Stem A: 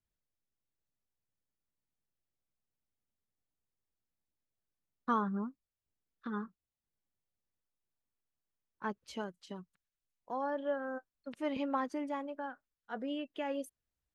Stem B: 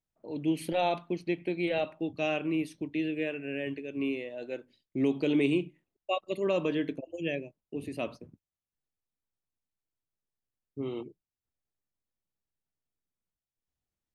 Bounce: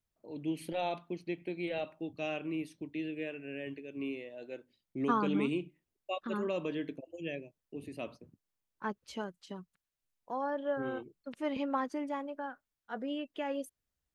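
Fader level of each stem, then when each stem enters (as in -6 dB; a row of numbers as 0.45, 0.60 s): +1.0, -6.5 dB; 0.00, 0.00 s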